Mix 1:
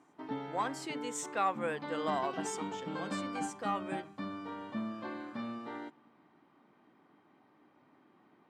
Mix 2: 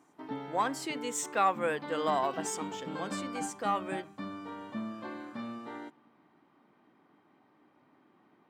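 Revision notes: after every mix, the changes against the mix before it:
speech +4.5 dB
master: remove low-pass filter 11,000 Hz 12 dB per octave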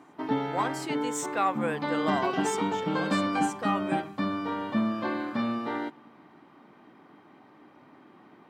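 background +11.0 dB

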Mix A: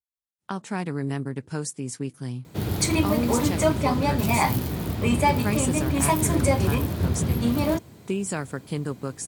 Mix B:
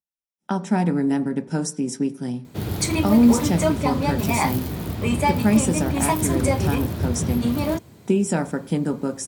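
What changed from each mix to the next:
reverb: on, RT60 0.45 s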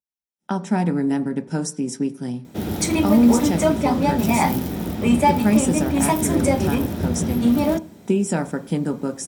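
background: send on

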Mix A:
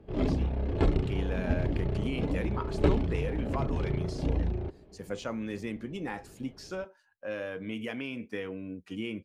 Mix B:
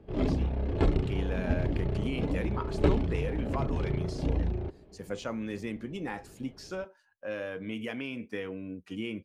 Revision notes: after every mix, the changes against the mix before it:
nothing changed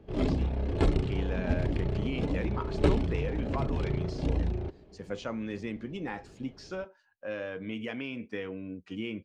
speech: add high-frequency loss of the air 150 metres
master: add high-shelf EQ 5,200 Hz +10 dB

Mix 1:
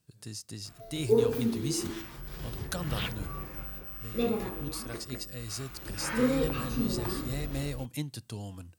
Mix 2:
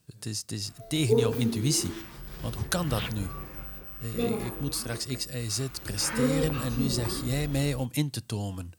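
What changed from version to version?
speech +7.5 dB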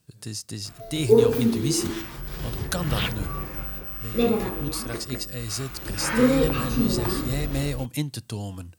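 background +7.5 dB

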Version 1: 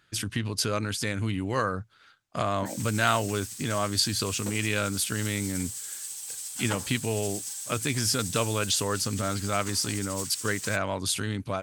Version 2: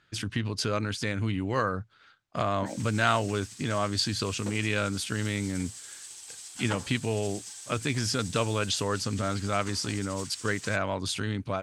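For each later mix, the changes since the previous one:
master: add high-frequency loss of the air 69 metres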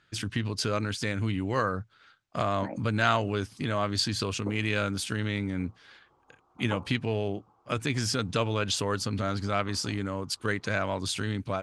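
background: add Butterworth low-pass 1,300 Hz 96 dB per octave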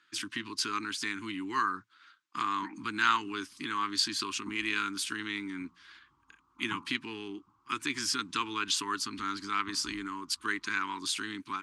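speech: add high-pass with resonance 450 Hz, resonance Q 4.5
master: add Chebyshev band-stop filter 310–1,000 Hz, order 3

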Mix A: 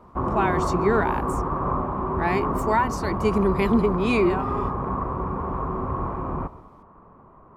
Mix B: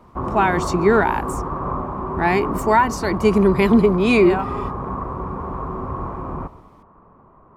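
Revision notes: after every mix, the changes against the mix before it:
speech +6.5 dB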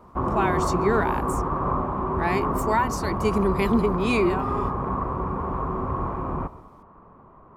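speech −8.0 dB
master: add high-shelf EQ 4,800 Hz +7.5 dB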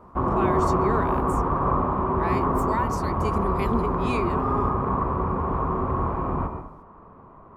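speech −6.5 dB
background: send +11.5 dB

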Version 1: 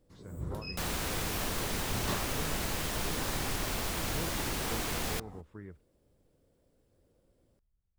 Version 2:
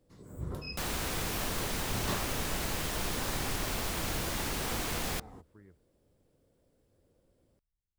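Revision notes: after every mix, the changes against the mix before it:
speech −10.5 dB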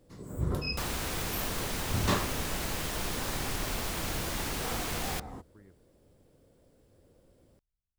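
first sound +7.5 dB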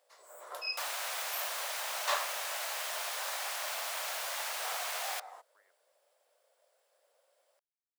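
master: add elliptic high-pass filter 600 Hz, stop band 70 dB

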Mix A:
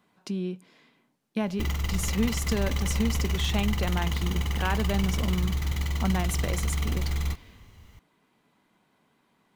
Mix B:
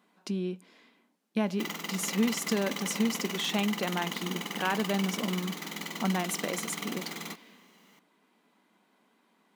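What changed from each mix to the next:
master: add linear-phase brick-wall high-pass 170 Hz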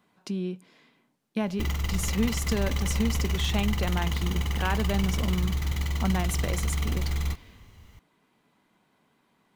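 master: remove linear-phase brick-wall high-pass 170 Hz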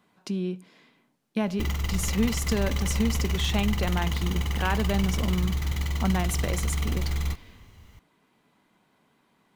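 reverb: on, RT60 0.65 s

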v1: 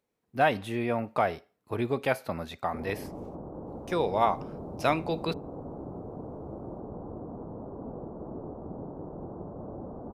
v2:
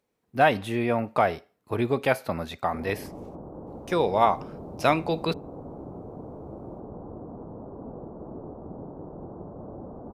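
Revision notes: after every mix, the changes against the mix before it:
speech +4.0 dB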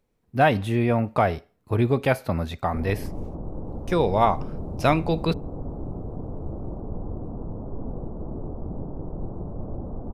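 master: remove high-pass filter 320 Hz 6 dB per octave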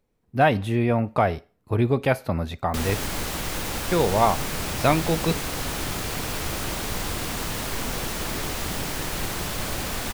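background: remove Gaussian smoothing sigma 13 samples

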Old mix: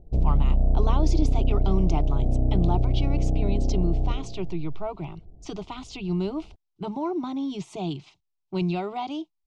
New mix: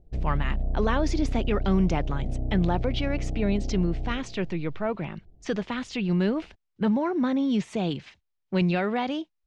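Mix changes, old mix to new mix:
speech: remove phaser with its sweep stopped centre 340 Hz, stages 8
background −7.0 dB

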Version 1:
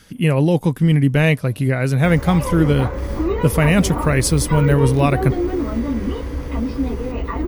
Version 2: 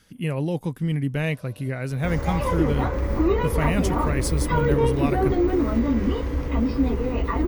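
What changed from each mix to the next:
speech −10.0 dB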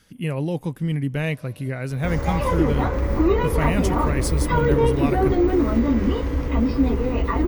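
reverb: on, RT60 1.7 s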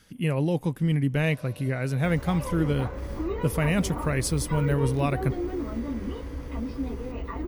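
first sound +4.0 dB
second sound −12.0 dB

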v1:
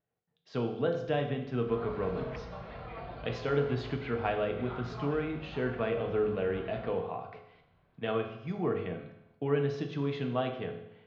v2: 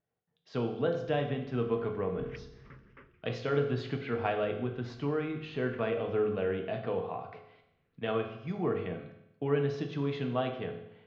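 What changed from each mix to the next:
second sound: muted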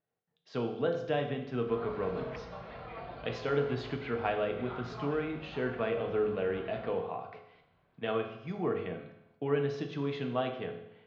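second sound: unmuted
master: add low-shelf EQ 130 Hz −7.5 dB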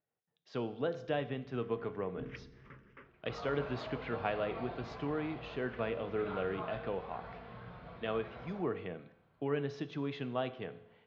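speech: send −10.0 dB
second sound: entry +1.60 s

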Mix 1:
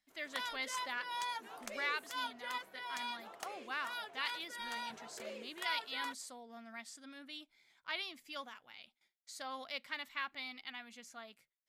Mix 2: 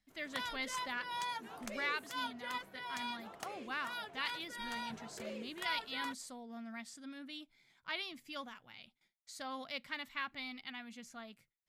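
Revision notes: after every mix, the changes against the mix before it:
master: add bass and treble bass +14 dB, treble −1 dB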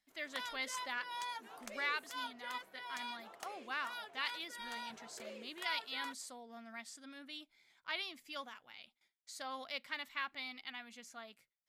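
background −3.0 dB
master: add bass and treble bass −14 dB, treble +1 dB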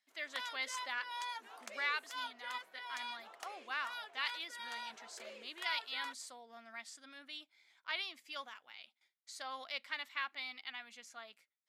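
master: add meter weighting curve A

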